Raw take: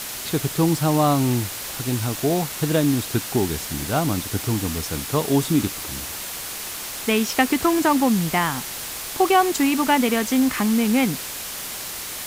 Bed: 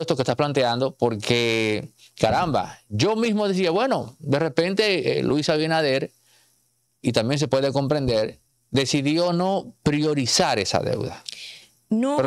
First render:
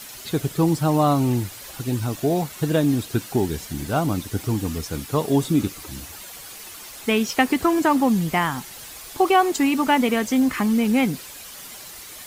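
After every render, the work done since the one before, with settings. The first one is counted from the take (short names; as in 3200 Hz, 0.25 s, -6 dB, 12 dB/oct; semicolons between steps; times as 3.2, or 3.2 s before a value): denoiser 10 dB, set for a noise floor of -32 dBFS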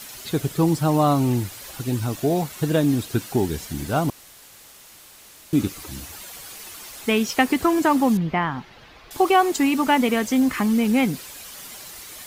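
4.1–5.53 room tone; 8.17–9.11 air absorption 290 m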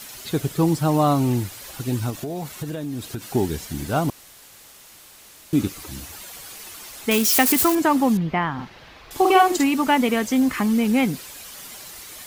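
2.1–3.33 compressor 12:1, threshold -25 dBFS; 7.11–7.75 switching spikes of -14 dBFS; 8.54–9.64 doubler 50 ms -3 dB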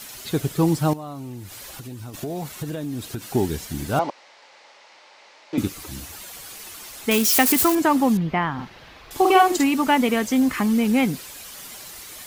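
0.93–2.14 compressor 5:1, threshold -34 dBFS; 3.99–5.58 speaker cabinet 440–5000 Hz, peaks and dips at 560 Hz +8 dB, 880 Hz +9 dB, 2100 Hz +5 dB, 3400 Hz -3 dB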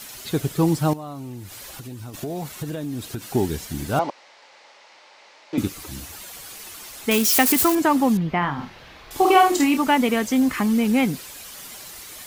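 8.39–9.78 doubler 28 ms -7 dB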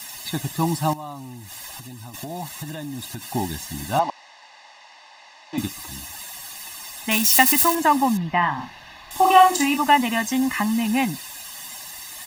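low shelf 230 Hz -10.5 dB; comb 1.1 ms, depth 90%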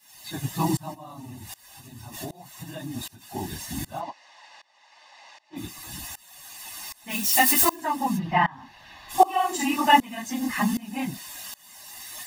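phase scrambler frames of 50 ms; tremolo saw up 1.3 Hz, depth 95%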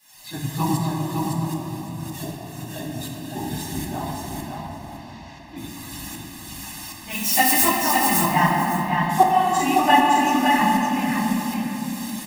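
on a send: feedback echo 0.561 s, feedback 19%, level -3.5 dB; on the sum: shoebox room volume 220 m³, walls hard, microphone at 0.52 m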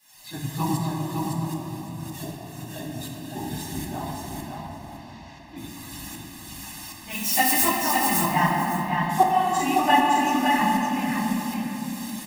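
gain -3 dB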